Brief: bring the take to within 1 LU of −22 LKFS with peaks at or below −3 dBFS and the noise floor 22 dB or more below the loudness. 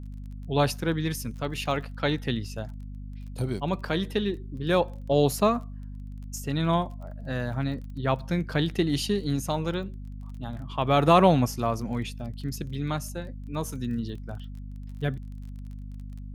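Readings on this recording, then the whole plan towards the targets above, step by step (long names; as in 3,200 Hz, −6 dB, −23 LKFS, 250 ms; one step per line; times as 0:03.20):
crackle rate 24 per second; mains hum 50 Hz; hum harmonics up to 250 Hz; level of the hum −36 dBFS; integrated loudness −27.5 LKFS; sample peak −5.5 dBFS; target loudness −22.0 LKFS
→ click removal
hum removal 50 Hz, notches 5
level +5.5 dB
brickwall limiter −3 dBFS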